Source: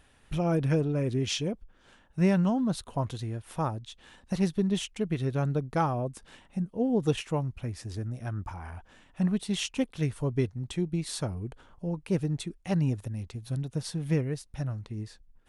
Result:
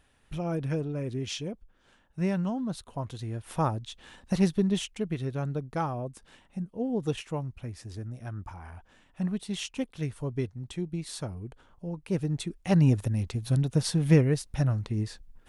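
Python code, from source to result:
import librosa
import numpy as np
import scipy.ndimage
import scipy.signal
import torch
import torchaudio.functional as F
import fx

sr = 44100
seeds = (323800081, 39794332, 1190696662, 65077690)

y = fx.gain(x, sr, db=fx.line((3.06, -4.5), (3.51, 3.0), (4.42, 3.0), (5.35, -3.5), (11.92, -3.5), (12.96, 7.0)))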